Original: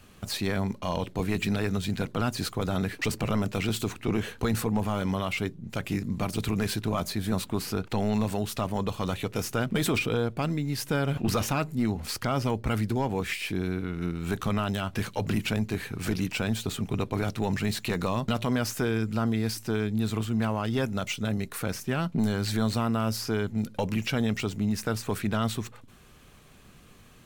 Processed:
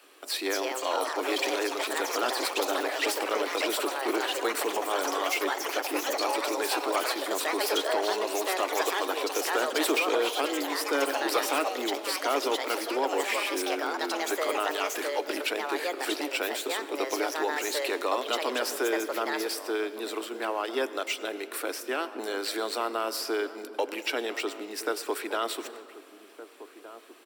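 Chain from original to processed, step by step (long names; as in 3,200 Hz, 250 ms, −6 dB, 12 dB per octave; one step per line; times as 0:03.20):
Butterworth high-pass 290 Hz 72 dB per octave
notch filter 6,500 Hz, Q 7.9
slap from a distant wall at 260 metres, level −14 dB
convolution reverb RT60 2.5 s, pre-delay 80 ms, DRR 14 dB
delay with pitch and tempo change per echo 295 ms, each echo +5 semitones, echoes 3
level +1.5 dB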